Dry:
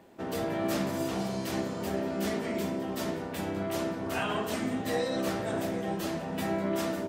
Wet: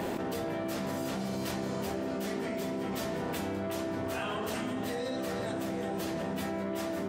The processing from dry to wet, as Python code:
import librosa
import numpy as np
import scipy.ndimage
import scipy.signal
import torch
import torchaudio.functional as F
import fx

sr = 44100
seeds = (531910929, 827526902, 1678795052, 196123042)

y = x + 10.0 ** (-8.0 / 20.0) * np.pad(x, (int(369 * sr / 1000.0), 0))[:len(x)]
y = fx.env_flatten(y, sr, amount_pct=100)
y = y * 10.0 ** (-7.5 / 20.0)